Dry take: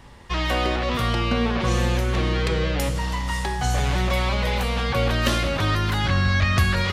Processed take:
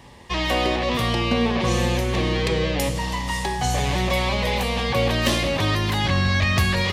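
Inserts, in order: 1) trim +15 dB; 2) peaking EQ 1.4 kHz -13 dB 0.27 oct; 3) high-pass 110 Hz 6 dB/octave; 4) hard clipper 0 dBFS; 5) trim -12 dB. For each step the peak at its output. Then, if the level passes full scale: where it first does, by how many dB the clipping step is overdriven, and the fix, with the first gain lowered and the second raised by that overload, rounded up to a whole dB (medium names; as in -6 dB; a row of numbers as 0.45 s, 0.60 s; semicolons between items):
+6.5 dBFS, +7.0 dBFS, +6.5 dBFS, 0.0 dBFS, -12.0 dBFS; step 1, 6.5 dB; step 1 +8 dB, step 5 -5 dB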